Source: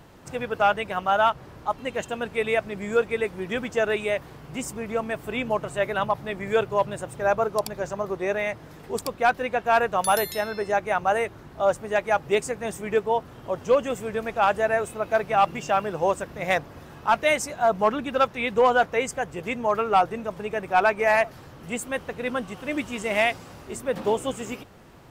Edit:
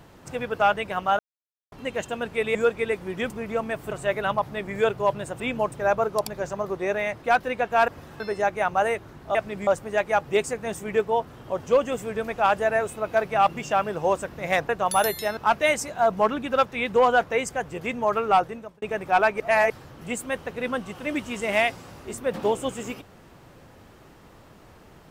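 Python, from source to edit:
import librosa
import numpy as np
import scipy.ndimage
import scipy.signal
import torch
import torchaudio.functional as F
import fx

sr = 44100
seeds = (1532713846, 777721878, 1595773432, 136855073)

y = fx.edit(x, sr, fx.silence(start_s=1.19, length_s=0.53),
    fx.move(start_s=2.55, length_s=0.32, to_s=11.65),
    fx.cut(start_s=3.62, length_s=1.08),
    fx.move(start_s=5.31, length_s=0.32, to_s=7.12),
    fx.cut(start_s=8.62, length_s=0.54),
    fx.swap(start_s=9.82, length_s=0.68, other_s=16.67, other_length_s=0.32),
    fx.fade_out_span(start_s=19.99, length_s=0.45),
    fx.reverse_span(start_s=21.02, length_s=0.3), tone=tone)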